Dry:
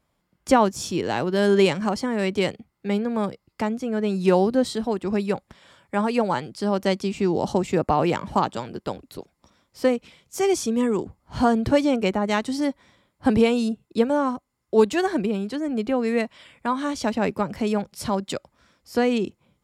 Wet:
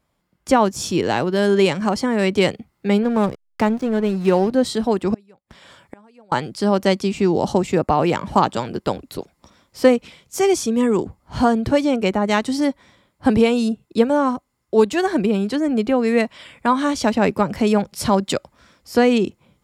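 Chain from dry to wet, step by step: vocal rider within 3 dB 0.5 s; 3.03–4.52 backlash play -32.5 dBFS; 5.14–6.32 flipped gate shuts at -25 dBFS, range -32 dB; gain +4.5 dB

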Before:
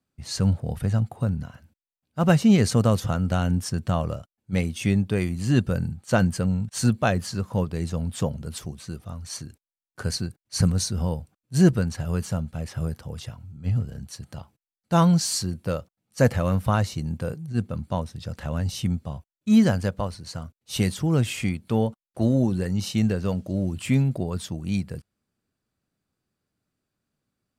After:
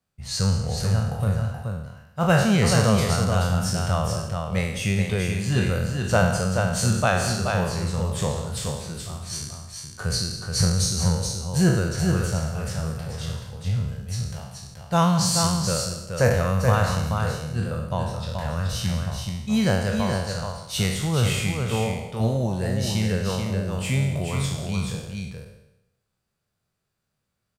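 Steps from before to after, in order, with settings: spectral trails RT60 0.86 s; bell 280 Hz -13 dB 0.63 oct; tapped delay 0.188/0.428 s -14.5/-5 dB

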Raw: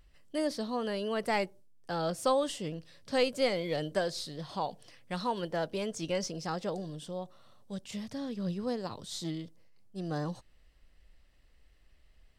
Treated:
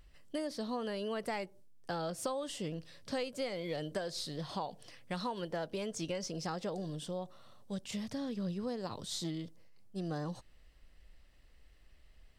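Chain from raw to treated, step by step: compressor 6:1, threshold -36 dBFS, peak gain reduction 13 dB; gain +1.5 dB

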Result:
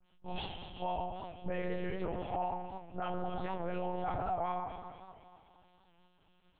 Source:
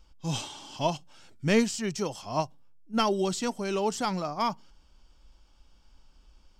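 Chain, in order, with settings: spectral delay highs late, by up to 0.108 s; notch 1100 Hz, Q 5.2; dynamic EQ 740 Hz, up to +8 dB, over -46 dBFS, Q 3; notches 60/120/180/240/300/360/420/480 Hz; chorus 0.63 Hz, delay 19.5 ms, depth 6.3 ms; low shelf 160 Hz -11.5 dB; echo with dull and thin repeats by turns 0.119 s, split 1700 Hz, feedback 71%, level -12 dB; reverb RT60 1.2 s, pre-delay 4 ms, DRR 6.5 dB; treble ducked by the level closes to 2100 Hz, closed at -31 dBFS; monotone LPC vocoder at 8 kHz 180 Hz; limiter -26 dBFS, peak gain reduction 13 dB; record warp 78 rpm, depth 100 cents

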